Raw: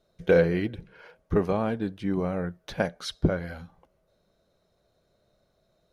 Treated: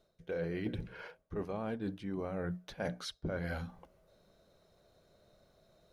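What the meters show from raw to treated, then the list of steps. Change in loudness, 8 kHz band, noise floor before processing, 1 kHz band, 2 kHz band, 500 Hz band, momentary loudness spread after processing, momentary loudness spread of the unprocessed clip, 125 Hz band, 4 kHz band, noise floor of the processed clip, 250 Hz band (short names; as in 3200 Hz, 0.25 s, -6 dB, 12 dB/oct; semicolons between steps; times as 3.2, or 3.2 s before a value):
-12.5 dB, -7.0 dB, -71 dBFS, -10.5 dB, -10.5 dB, -13.5 dB, 6 LU, 13 LU, -10.5 dB, -8.0 dB, -74 dBFS, -11.0 dB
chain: notches 60/120/180/240/300 Hz; reverse; compressor 16:1, threshold -37 dBFS, peak gain reduction 22 dB; reverse; gain +3 dB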